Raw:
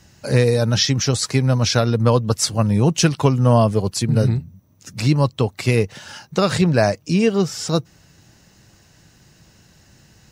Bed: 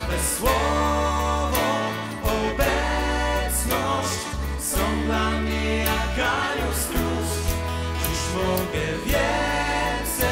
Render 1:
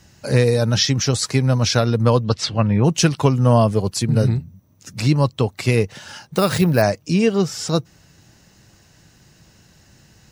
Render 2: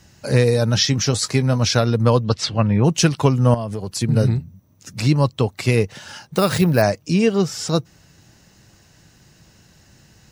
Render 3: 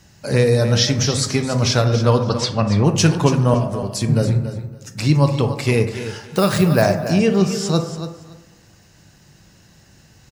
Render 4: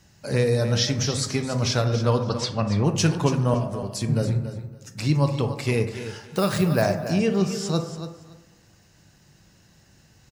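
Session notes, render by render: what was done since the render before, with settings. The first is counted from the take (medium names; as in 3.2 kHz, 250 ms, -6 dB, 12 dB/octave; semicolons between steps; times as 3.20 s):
2.24–2.83 s: resonant low-pass 4.9 kHz -> 1.9 kHz, resonance Q 1.7; 6.26–6.82 s: careless resampling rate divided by 3×, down none, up hold
0.91–1.60 s: doubling 20 ms -13 dB; 3.54–4.02 s: compression 12:1, threshold -21 dBFS
feedback delay 282 ms, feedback 18%, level -11 dB; plate-style reverb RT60 1.1 s, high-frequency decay 0.35×, DRR 7 dB
trim -6 dB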